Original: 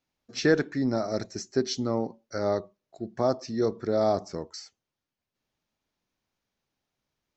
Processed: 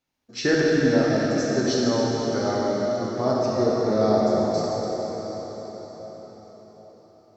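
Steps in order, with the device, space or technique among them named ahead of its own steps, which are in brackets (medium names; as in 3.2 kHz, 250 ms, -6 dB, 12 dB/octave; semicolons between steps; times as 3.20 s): cathedral (reverberation RT60 5.4 s, pre-delay 7 ms, DRR -5.5 dB)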